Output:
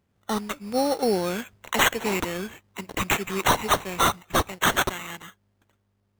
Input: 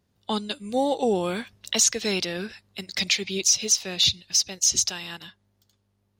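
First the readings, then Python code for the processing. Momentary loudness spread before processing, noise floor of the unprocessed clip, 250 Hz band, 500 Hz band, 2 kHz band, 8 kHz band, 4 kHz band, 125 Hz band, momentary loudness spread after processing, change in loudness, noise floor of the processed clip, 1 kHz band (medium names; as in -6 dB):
14 LU, -71 dBFS, +1.5 dB, +1.5 dB, +6.5 dB, -10.0 dB, -5.5 dB, +4.0 dB, 13 LU, -2.0 dB, -71 dBFS, +8.5 dB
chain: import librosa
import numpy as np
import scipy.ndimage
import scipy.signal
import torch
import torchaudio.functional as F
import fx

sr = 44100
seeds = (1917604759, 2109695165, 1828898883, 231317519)

y = fx.mod_noise(x, sr, seeds[0], snr_db=23)
y = fx.sample_hold(y, sr, seeds[1], rate_hz=4900.0, jitter_pct=0)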